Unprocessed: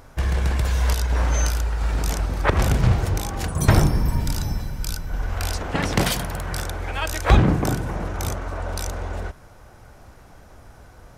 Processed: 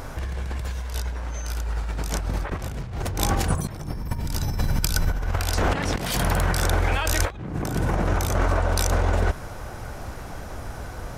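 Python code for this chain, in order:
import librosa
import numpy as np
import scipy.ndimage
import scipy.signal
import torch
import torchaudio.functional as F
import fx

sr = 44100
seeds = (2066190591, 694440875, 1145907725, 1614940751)

y = fx.over_compress(x, sr, threshold_db=-30.0, ratio=-1.0)
y = y * 10.0 ** (4.5 / 20.0)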